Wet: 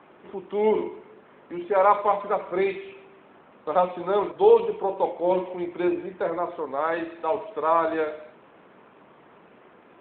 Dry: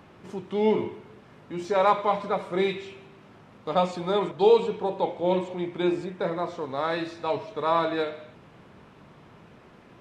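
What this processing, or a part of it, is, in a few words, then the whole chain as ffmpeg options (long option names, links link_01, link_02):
telephone: -af "highpass=310,lowpass=3000,volume=3dB" -ar 8000 -c:a libopencore_amrnb -b:a 12200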